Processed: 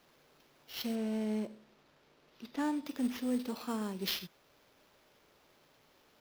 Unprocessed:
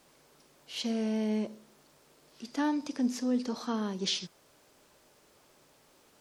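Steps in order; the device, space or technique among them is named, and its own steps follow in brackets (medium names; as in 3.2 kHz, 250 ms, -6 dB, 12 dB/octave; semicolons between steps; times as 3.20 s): early companding sampler (sample-rate reducer 8.5 kHz, jitter 0%; companded quantiser 6-bit); 0.95–2.86 s: treble shelf 7.3 kHz -11 dB; trim -4 dB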